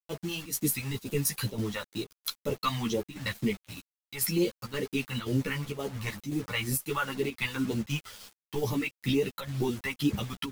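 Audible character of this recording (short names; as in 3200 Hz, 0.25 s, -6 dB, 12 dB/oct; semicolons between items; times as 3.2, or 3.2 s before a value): phasing stages 2, 2.1 Hz, lowest notch 340–1400 Hz; a quantiser's noise floor 8-bit, dither none; chopped level 1.9 Hz, depth 60%, duty 85%; a shimmering, thickened sound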